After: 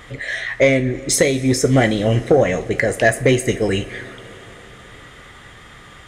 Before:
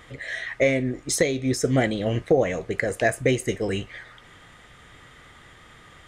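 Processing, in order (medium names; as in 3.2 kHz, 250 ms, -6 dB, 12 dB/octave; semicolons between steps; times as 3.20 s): two-slope reverb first 0.22 s, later 4.3 s, from -21 dB, DRR 8.5 dB; saturation -9.5 dBFS, distortion -23 dB; trim +7 dB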